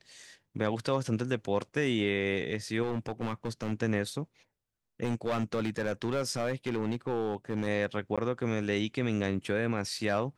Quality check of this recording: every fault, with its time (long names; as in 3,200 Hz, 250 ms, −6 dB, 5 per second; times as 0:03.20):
0:02.83–0:03.73: clipping −27 dBFS
0:05.03–0:07.68: clipping −25 dBFS
0:08.16–0:08.18: drop-out 16 ms